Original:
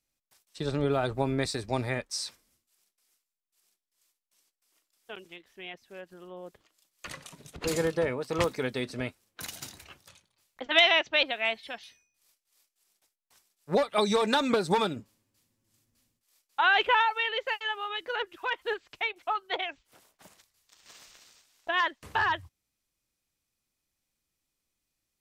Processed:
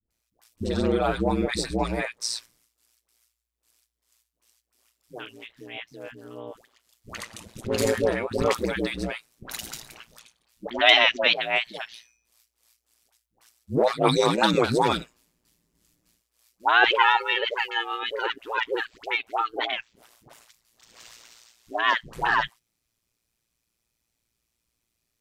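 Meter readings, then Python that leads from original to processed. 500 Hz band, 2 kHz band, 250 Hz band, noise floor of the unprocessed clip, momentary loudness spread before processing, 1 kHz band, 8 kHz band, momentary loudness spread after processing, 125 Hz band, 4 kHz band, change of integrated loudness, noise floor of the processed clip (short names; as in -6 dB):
+4.0 dB, +4.5 dB, +5.0 dB, -84 dBFS, 21 LU, +4.5 dB, +4.5 dB, 21 LU, +3.5 dB, +4.5 dB, +4.5 dB, -80 dBFS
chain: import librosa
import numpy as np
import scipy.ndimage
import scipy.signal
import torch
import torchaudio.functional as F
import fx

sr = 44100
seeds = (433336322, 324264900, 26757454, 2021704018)

y = fx.dispersion(x, sr, late='highs', ms=107.0, hz=600.0)
y = y * np.sin(2.0 * np.pi * 58.0 * np.arange(len(y)) / sr)
y = y * librosa.db_to_amplitude(7.5)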